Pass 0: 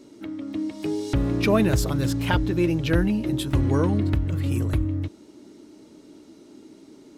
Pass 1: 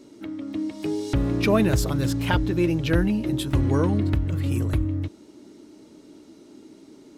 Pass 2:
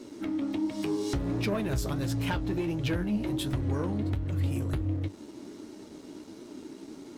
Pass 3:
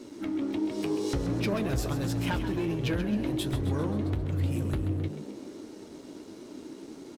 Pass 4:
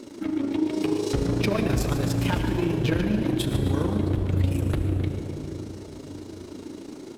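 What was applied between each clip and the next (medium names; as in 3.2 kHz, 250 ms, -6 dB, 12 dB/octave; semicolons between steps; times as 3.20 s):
no audible change
compression 5:1, threshold -29 dBFS, peak gain reduction 13 dB; waveshaping leveller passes 2; flange 1.4 Hz, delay 7.8 ms, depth 8.3 ms, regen +56%
frequency-shifting echo 132 ms, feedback 56%, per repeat +57 Hz, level -10.5 dB
AM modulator 27 Hz, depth 50%; on a send at -7.5 dB: reverberation RT60 2.8 s, pre-delay 56 ms; on the sum: trim +7 dB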